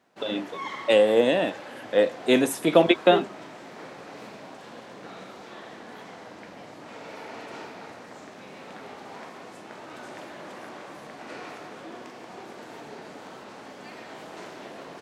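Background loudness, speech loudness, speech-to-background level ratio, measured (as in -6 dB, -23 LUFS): -41.5 LUFS, -22.0 LUFS, 19.5 dB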